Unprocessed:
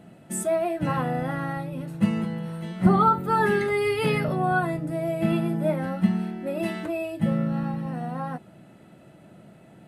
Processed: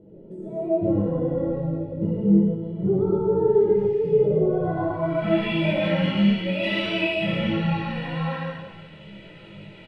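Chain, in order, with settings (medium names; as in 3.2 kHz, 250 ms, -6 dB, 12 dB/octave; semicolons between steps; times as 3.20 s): resonant high shelf 2.3 kHz +12 dB, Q 1.5; flange 0.77 Hz, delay 2.9 ms, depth 9.5 ms, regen +41%; peaking EQ 200 Hz +6 dB 0.21 oct; comb 2.1 ms, depth 72%; reverse bouncing-ball echo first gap 60 ms, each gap 1.25×, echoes 5; painted sound noise, 3.75–4.09 s, 1.7–9.5 kHz -25 dBFS; peak limiter -18.5 dBFS, peak gain reduction 9 dB; reverberation RT60 0.40 s, pre-delay 112 ms, DRR 0 dB; low-pass sweep 420 Hz -> 2.4 kHz, 4.48–5.57 s; detune thickener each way 18 cents; trim +5 dB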